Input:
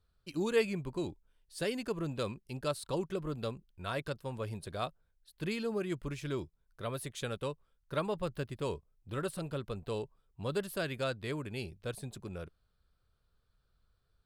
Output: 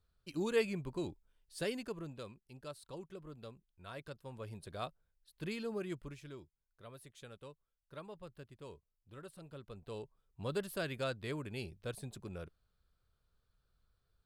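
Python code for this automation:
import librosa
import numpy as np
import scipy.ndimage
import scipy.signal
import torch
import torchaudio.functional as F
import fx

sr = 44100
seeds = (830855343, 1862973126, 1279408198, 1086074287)

y = fx.gain(x, sr, db=fx.line((1.69, -3.0), (2.29, -13.0), (3.69, -13.0), (4.83, -5.0), (5.89, -5.0), (6.4, -15.0), (9.34, -15.0), (10.41, -3.0)))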